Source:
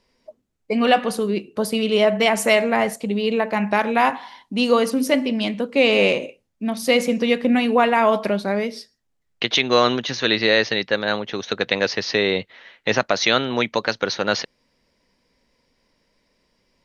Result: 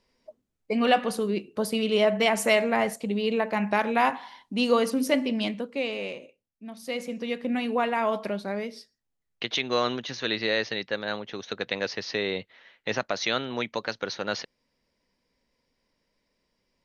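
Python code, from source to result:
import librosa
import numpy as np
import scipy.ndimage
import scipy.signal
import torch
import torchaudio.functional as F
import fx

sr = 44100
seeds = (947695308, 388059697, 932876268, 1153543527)

y = fx.gain(x, sr, db=fx.line((5.47, -5.0), (6.0, -17.0), (6.64, -17.0), (7.66, -9.0)))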